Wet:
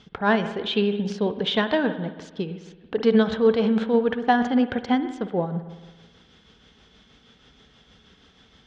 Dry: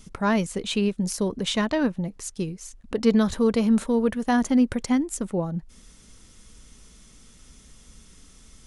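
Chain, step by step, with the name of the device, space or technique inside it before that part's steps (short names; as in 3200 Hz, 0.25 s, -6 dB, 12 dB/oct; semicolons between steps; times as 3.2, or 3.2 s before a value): combo amplifier with spring reverb and tremolo (spring tank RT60 1.3 s, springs 54 ms, chirp 40 ms, DRR 9.5 dB; tremolo 6.3 Hz, depth 38%; speaker cabinet 82–4400 Hz, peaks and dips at 440 Hz +6 dB, 770 Hz +9 dB, 1600 Hz +8 dB, 3300 Hz +9 dB)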